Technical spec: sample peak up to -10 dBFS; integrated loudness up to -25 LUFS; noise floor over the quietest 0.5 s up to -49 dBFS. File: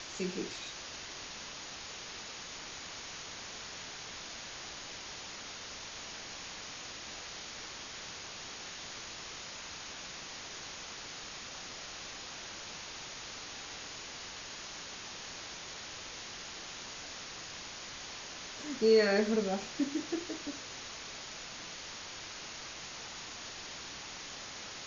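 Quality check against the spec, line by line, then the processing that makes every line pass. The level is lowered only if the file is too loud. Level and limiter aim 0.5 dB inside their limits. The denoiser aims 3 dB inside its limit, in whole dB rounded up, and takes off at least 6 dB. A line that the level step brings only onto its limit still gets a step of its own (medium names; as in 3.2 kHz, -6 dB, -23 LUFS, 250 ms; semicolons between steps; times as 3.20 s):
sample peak -15.5 dBFS: pass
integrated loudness -39.0 LUFS: pass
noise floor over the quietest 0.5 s -45 dBFS: fail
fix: noise reduction 7 dB, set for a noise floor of -45 dBFS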